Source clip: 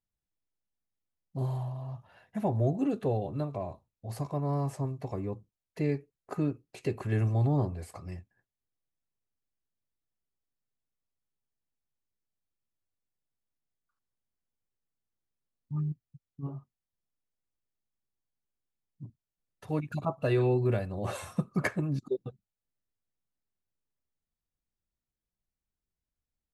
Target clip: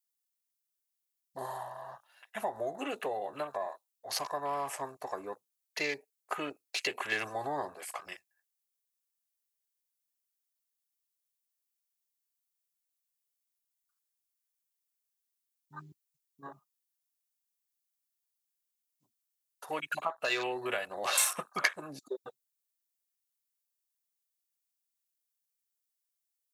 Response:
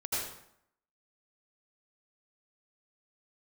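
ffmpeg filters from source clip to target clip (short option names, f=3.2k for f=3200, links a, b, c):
-af "highpass=730,acompressor=threshold=-38dB:ratio=6,afwtdn=0.00178,crystalizer=i=8.5:c=0,volume=5dB"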